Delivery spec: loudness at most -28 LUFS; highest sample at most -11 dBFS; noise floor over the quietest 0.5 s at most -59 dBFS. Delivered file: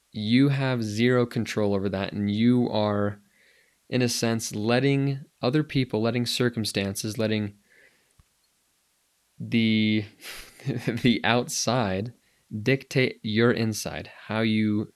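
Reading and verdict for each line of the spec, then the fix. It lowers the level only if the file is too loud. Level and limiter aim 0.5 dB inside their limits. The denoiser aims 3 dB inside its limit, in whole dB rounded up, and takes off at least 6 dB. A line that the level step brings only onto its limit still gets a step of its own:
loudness -25.0 LUFS: fail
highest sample -4.0 dBFS: fail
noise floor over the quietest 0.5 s -69 dBFS: OK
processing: gain -3.5 dB; limiter -11.5 dBFS

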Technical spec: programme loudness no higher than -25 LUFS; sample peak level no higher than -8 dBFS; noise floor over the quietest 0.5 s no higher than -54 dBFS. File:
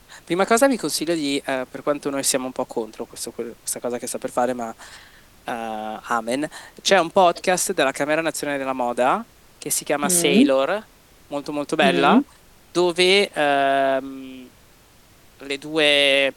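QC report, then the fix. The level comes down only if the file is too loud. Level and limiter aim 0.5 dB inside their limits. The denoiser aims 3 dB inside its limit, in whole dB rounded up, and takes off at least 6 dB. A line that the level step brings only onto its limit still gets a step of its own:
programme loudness -20.5 LUFS: fail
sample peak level -3.5 dBFS: fail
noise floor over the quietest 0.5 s -52 dBFS: fail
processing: gain -5 dB

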